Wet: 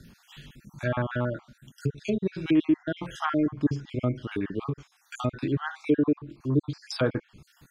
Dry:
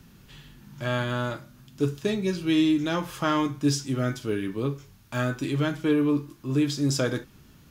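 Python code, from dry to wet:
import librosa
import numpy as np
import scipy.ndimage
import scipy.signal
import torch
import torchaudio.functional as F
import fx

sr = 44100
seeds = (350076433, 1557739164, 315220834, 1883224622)

y = fx.spec_dropout(x, sr, seeds[0], share_pct=49)
y = fx.env_lowpass_down(y, sr, base_hz=1500.0, full_db=-25.5)
y = y * librosa.db_to_amplitude(2.0)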